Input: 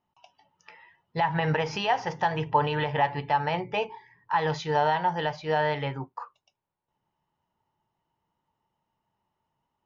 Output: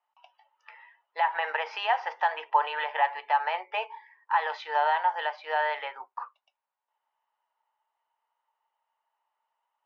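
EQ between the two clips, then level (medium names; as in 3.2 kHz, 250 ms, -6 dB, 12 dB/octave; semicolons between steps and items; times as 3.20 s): Bessel high-pass 980 Hz, order 6; low-pass 2.8 kHz 6 dB/octave; distance through air 210 m; +5.5 dB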